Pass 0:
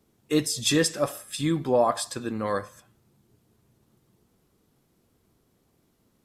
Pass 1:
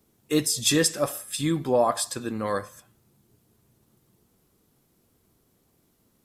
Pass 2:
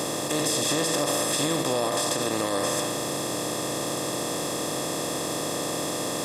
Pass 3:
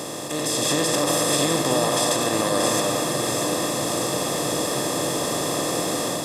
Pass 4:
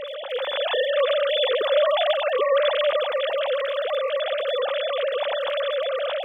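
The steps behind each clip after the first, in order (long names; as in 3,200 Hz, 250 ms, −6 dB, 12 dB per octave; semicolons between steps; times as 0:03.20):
high-shelf EQ 8,300 Hz +8.5 dB
compressor on every frequency bin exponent 0.2; brickwall limiter −9 dBFS, peak gain reduction 8.5 dB; level −6 dB
automatic gain control gain up to 6 dB; delay that swaps between a low-pass and a high-pass 317 ms, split 1,600 Hz, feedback 80%, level −5 dB; level −3 dB
three sine waves on the formant tracks; surface crackle 23 per second −39 dBFS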